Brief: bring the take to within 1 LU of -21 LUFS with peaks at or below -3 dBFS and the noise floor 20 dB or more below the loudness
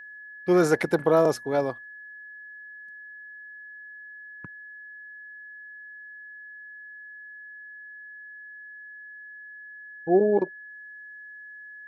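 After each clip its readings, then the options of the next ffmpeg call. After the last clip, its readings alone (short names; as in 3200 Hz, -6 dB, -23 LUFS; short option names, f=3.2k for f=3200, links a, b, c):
steady tone 1700 Hz; tone level -41 dBFS; loudness -23.5 LUFS; peak -8.5 dBFS; loudness target -21.0 LUFS
-> -af "bandreject=f=1.7k:w=30"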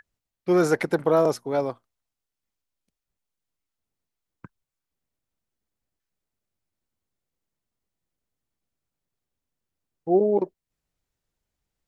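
steady tone none; loudness -23.5 LUFS; peak -8.5 dBFS; loudness target -21.0 LUFS
-> -af "volume=2.5dB"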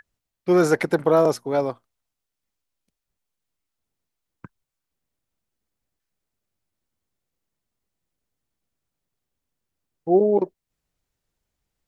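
loudness -21.0 LUFS; peak -6.0 dBFS; noise floor -84 dBFS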